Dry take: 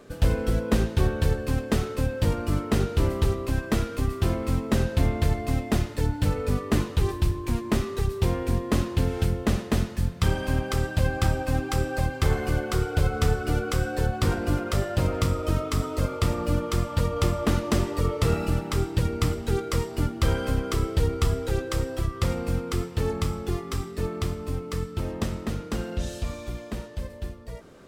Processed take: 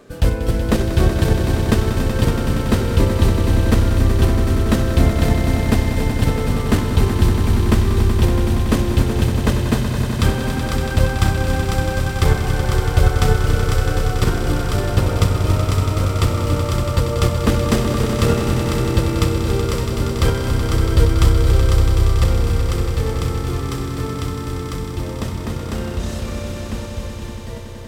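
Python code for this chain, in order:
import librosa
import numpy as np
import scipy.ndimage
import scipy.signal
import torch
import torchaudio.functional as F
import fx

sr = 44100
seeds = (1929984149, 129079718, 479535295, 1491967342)

p1 = fx.level_steps(x, sr, step_db=21)
p2 = x + (p1 * 10.0 ** (1.0 / 20.0))
p3 = fx.echo_swell(p2, sr, ms=94, loudest=5, wet_db=-9)
y = p3 * 10.0 ** (1.0 / 20.0)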